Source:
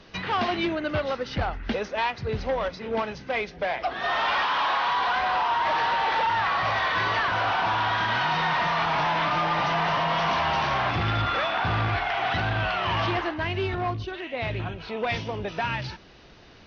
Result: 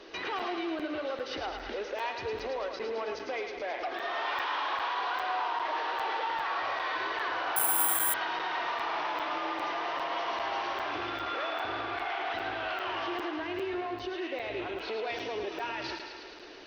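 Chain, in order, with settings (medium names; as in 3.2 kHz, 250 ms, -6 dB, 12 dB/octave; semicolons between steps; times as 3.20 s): resonant low shelf 240 Hz -12.5 dB, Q 3; compression, threshold -29 dBFS, peak gain reduction 11.5 dB; peak limiter -28 dBFS, peak gain reduction 9.5 dB; thinning echo 108 ms, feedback 74%, high-pass 540 Hz, level -6 dB; reverberation RT60 1.0 s, pre-delay 42 ms, DRR 14.5 dB; 7.56–8.14 s: careless resampling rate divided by 4×, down none, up zero stuff; crackling interface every 0.40 s, samples 256, zero, from 0.39 s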